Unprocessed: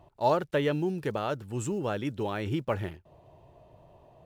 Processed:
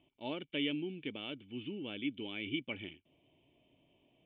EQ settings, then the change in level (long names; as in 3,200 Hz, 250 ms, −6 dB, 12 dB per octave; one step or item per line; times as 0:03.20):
formant resonators in series i
tilt shelving filter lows −9.5 dB, about 930 Hz
low-shelf EQ 220 Hz −10 dB
+10.0 dB